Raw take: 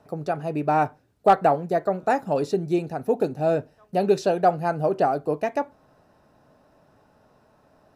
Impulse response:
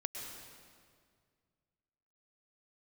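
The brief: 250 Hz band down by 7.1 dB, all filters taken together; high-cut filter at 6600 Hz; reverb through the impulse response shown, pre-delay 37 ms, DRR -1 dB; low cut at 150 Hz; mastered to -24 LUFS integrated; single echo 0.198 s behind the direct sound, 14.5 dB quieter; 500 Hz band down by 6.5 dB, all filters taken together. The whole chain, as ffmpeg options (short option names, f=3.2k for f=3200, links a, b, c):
-filter_complex "[0:a]highpass=150,lowpass=6.6k,equalizer=f=250:t=o:g=-7,equalizer=f=500:t=o:g=-7,aecho=1:1:198:0.188,asplit=2[a][b];[1:a]atrim=start_sample=2205,adelay=37[c];[b][c]afir=irnorm=-1:irlink=0,volume=1dB[d];[a][d]amix=inputs=2:normalize=0,volume=1dB"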